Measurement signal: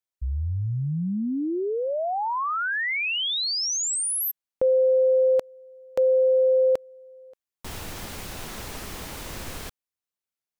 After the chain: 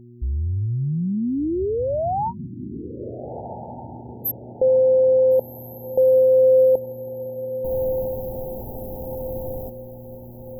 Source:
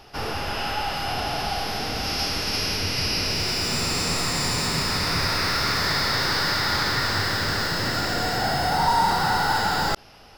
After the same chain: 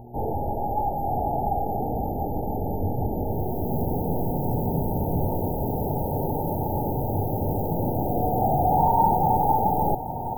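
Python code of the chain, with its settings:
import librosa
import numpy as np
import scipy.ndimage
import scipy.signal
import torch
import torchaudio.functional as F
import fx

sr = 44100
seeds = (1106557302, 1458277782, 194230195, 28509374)

y = fx.dmg_buzz(x, sr, base_hz=120.0, harmonics=3, level_db=-48.0, tilt_db=-3, odd_only=False)
y = fx.brickwall_bandstop(y, sr, low_hz=930.0, high_hz=12000.0)
y = fx.echo_diffused(y, sr, ms=1429, feedback_pct=44, wet_db=-11)
y = y * 10.0 ** (3.5 / 20.0)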